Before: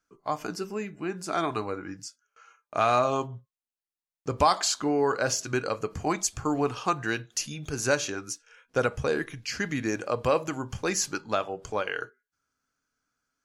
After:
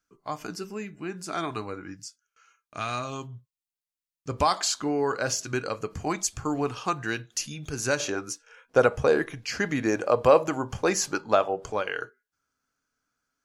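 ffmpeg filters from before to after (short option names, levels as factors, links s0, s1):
-af "asetnsamples=n=441:p=0,asendcmd='1.95 equalizer g -13;4.29 equalizer g -2;8 equalizer g 7.5;11.72 equalizer g 1',equalizer=f=650:t=o:w=2.1:g=-4.5"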